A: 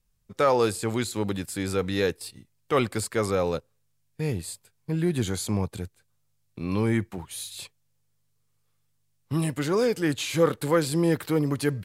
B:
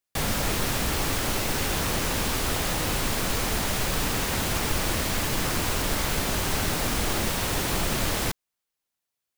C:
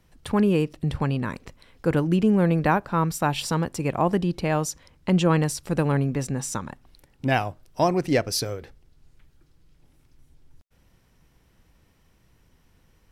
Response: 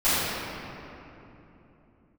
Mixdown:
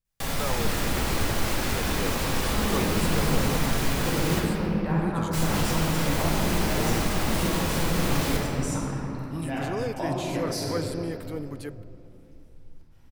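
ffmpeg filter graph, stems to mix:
-filter_complex "[0:a]dynaudnorm=framelen=820:gausssize=5:maxgain=4.5dB,volume=-12.5dB[link_01];[1:a]alimiter=limit=-20dB:level=0:latency=1,adelay=50,volume=-4.5dB,asplit=3[link_02][link_03][link_04];[link_02]atrim=end=4.4,asetpts=PTS-STARTPTS,afade=type=out:start_time=4.396:duration=0.004:curve=hsin[link_05];[link_03]atrim=start=4.4:end=5.33,asetpts=PTS-STARTPTS,volume=0[link_06];[link_04]atrim=start=5.33,asetpts=PTS-STARTPTS,afade=type=in:duration=0.004:curve=hsin[link_07];[link_05][link_06][link_07]concat=n=3:v=0:a=1,asplit=2[link_08][link_09];[link_09]volume=-12.5dB[link_10];[2:a]acompressor=threshold=-28dB:ratio=6,adelay=2200,volume=-6.5dB,asplit=2[link_11][link_12];[link_12]volume=-11dB[link_13];[3:a]atrim=start_sample=2205[link_14];[link_10][link_13]amix=inputs=2:normalize=0[link_15];[link_15][link_14]afir=irnorm=-1:irlink=0[link_16];[link_01][link_08][link_11][link_16]amix=inputs=4:normalize=0"

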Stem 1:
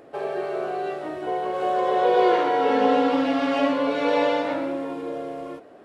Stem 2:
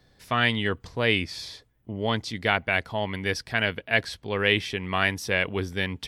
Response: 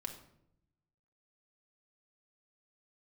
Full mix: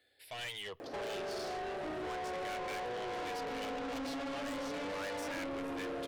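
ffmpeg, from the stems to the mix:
-filter_complex "[0:a]alimiter=limit=-18dB:level=0:latency=1,acompressor=threshold=-32dB:ratio=6,adelay=800,volume=1.5dB,asplit=2[link_01][link_02];[link_02]volume=-6dB[link_03];[1:a]highpass=frequency=980:poles=1,asoftclip=type=tanh:threshold=-22.5dB,asplit=2[link_04][link_05];[link_05]afreqshift=0.34[link_06];[link_04][link_06]amix=inputs=2:normalize=1,volume=-3.5dB,asplit=2[link_07][link_08];[link_08]volume=-23.5dB[link_09];[2:a]atrim=start_sample=2205[link_10];[link_03][link_09]amix=inputs=2:normalize=0[link_11];[link_11][link_10]afir=irnorm=-1:irlink=0[link_12];[link_01][link_07][link_12]amix=inputs=3:normalize=0,asoftclip=type=tanh:threshold=-37.5dB"

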